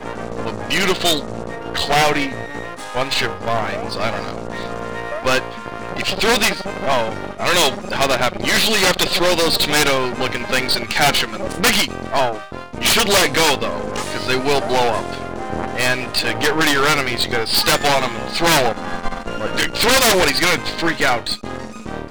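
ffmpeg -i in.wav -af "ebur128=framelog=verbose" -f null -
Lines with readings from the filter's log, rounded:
Integrated loudness:
  I:         -17.6 LUFS
  Threshold: -27.9 LUFS
Loudness range:
  LRA:         4.7 LU
  Threshold: -37.7 LUFS
  LRA low:   -20.7 LUFS
  LRA high:  -16.0 LUFS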